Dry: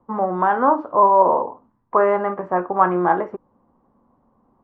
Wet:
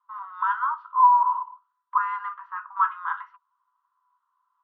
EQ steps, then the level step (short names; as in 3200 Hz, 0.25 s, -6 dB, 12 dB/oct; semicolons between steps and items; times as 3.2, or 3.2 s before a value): rippled Chebyshev high-pass 960 Hz, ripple 9 dB; air absorption 140 m; notch 2300 Hz, Q 8.5; +3.0 dB